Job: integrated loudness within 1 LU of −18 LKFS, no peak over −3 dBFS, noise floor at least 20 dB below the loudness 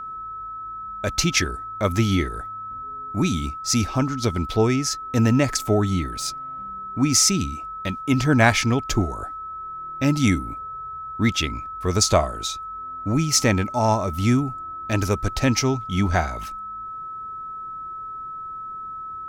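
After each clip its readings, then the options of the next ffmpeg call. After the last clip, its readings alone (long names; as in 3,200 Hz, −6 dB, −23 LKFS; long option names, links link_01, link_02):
interfering tone 1,300 Hz; level of the tone −31 dBFS; integrated loudness −23.5 LKFS; sample peak −2.0 dBFS; target loudness −18.0 LKFS
→ -af "bandreject=frequency=1300:width=30"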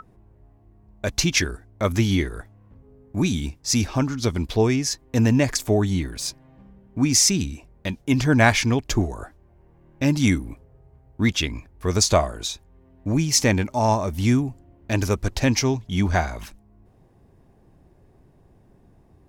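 interfering tone none found; integrated loudness −22.0 LKFS; sample peak −2.5 dBFS; target loudness −18.0 LKFS
→ -af "volume=4dB,alimiter=limit=-3dB:level=0:latency=1"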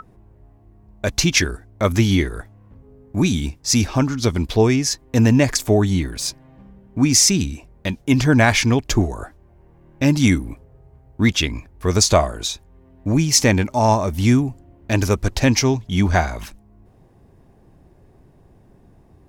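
integrated loudness −18.5 LKFS; sample peak −3.0 dBFS; background noise floor −52 dBFS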